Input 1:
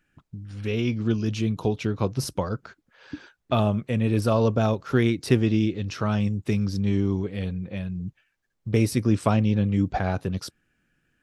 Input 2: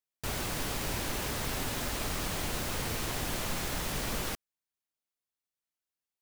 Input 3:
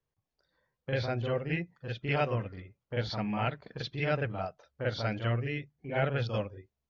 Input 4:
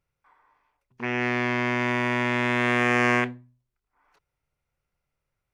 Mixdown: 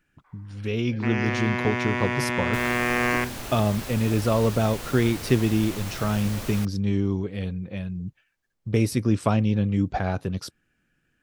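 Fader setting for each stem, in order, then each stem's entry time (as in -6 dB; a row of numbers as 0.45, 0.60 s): -0.5, -2.0, -15.5, -2.0 dB; 0.00, 2.30, 0.00, 0.00 s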